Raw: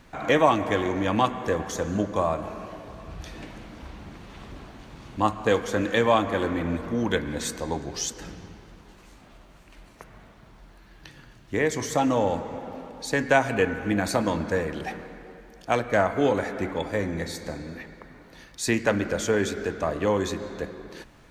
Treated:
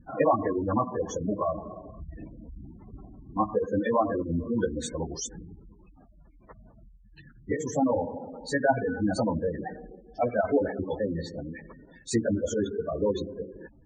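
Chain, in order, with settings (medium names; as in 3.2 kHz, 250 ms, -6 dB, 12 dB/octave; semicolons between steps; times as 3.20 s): spectral gate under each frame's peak -10 dB strong; plain phase-vocoder stretch 0.65×; trim +2.5 dB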